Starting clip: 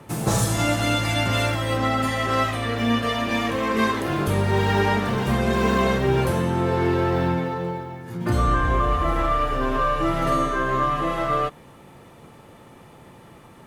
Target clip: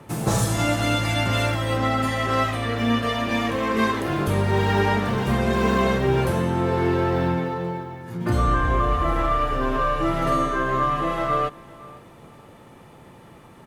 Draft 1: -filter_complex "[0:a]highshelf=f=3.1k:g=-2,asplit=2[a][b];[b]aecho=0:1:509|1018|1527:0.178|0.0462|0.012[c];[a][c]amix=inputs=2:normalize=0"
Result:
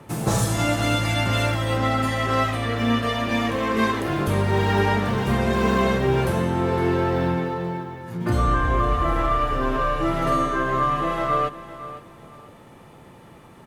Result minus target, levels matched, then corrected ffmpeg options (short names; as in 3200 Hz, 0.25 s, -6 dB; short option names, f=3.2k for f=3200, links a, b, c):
echo-to-direct +7.5 dB
-filter_complex "[0:a]highshelf=f=3.1k:g=-2,asplit=2[a][b];[b]aecho=0:1:509|1018:0.075|0.0195[c];[a][c]amix=inputs=2:normalize=0"